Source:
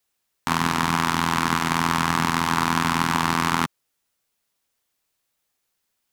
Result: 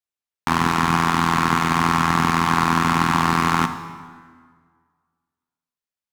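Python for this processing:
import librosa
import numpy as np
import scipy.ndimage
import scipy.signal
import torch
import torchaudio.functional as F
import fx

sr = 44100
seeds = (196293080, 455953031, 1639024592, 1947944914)

y = 10.0 ** (-13.0 / 20.0) * np.tanh(x / 10.0 ** (-13.0 / 20.0))
y = fx.power_curve(y, sr, exponent=1.4)
y = fx.high_shelf(y, sr, hz=7400.0, db=-5.5)
y = fx.rev_plate(y, sr, seeds[0], rt60_s=1.8, hf_ratio=0.7, predelay_ms=0, drr_db=8.5)
y = y * librosa.db_to_amplitude(7.5)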